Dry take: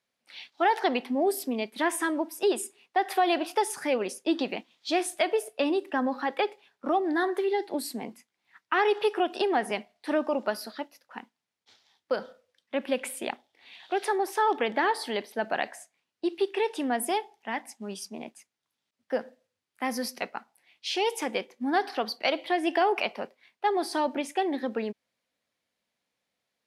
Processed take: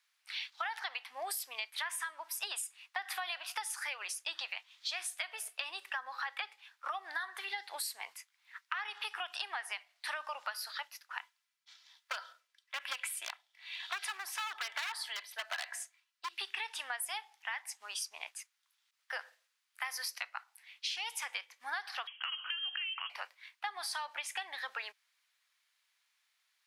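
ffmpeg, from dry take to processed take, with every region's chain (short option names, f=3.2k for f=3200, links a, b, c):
-filter_complex "[0:a]asettb=1/sr,asplit=3[a][b][c];[a]atrim=end=11.194[d];[b]atrim=start=11.19:end=16.38,asetpts=PTS-STARTPTS,afade=t=in:d=0.004:c=qsin,afade=t=out:st=5.186:d=0.004:c=qsin,aecho=1:1:3:0.44,atrim=end_sample=228879,aeval=exprs='0.075*(abs(mod(val(0)/0.075+3,4)-2)-1)':c=same,tremolo=f=1.1:d=0.54[e];[c]atrim=start=16.376[f];[d][e]acrossfade=d=0.004:c1=hsin:c2=qsin[g];[g][f]acrossfade=d=0.004:c1=qsin:c2=hsin,asettb=1/sr,asplit=3[h][i][j];[h]atrim=end=22.074[k];[i]atrim=start=22.07:end=23.1,asetpts=PTS-STARTPTS,afade=t=in:d=0.004:c=qsin,afade=t=out:st=1.026:d=0.004:c=qsin,acompressor=threshold=-33dB:ratio=3:attack=3.2:release=140:knee=1:detection=peak,lowpass=f=3k:t=q:w=0.5098,lowpass=f=3k:t=q:w=0.6013,lowpass=f=3k:t=q:w=0.9,lowpass=f=3k:t=q:w=2.563,afreqshift=-3500[l];[j]atrim=start=23.096[m];[k][l]acrossfade=d=0.004:c1=hsin:c2=qsin[n];[n][m]acrossfade=d=0.004:c1=qsin:c2=hsin,highpass=f=1.1k:w=0.5412,highpass=f=1.1k:w=1.3066,acompressor=threshold=-42dB:ratio=10,volume=6.5dB"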